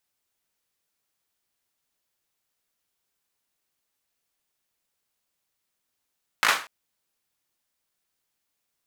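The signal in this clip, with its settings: hand clap length 0.24 s, bursts 4, apart 18 ms, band 1.4 kHz, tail 0.34 s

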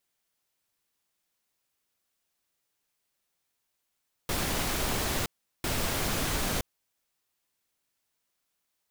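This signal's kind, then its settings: noise bursts pink, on 0.97 s, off 0.38 s, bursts 2, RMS -29.5 dBFS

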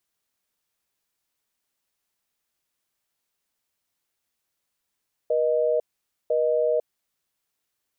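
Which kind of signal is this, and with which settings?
call progress tone busy tone, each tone -22 dBFS 1.64 s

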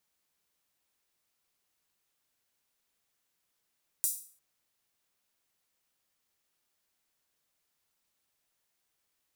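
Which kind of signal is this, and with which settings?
open hi-hat length 0.35 s, high-pass 8.3 kHz, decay 0.45 s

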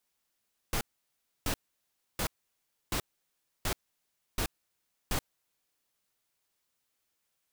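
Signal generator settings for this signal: noise bursts pink, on 0.08 s, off 0.65 s, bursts 7, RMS -30.5 dBFS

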